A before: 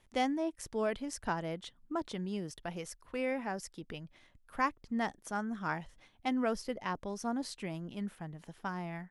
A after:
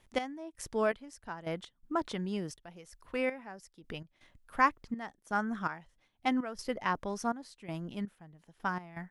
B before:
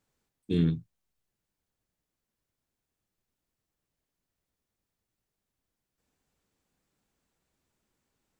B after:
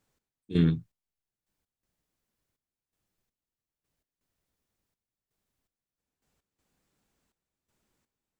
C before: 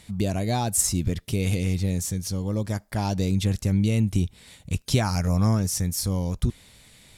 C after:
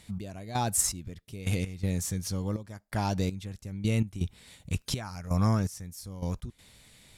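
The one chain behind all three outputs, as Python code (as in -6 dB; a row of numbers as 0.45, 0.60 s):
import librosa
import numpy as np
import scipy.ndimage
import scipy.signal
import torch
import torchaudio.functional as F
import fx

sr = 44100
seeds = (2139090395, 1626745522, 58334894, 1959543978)

y = fx.step_gate(x, sr, bpm=82, pattern='x..xx...x.xxx', floor_db=-12.0, edge_ms=4.5)
y = fx.dynamic_eq(y, sr, hz=1400.0, q=0.86, threshold_db=-50.0, ratio=4.0, max_db=5)
y = y * 10.0 ** (-12 / 20.0) / np.max(np.abs(y))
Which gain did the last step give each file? +2.0, +2.0, -4.0 dB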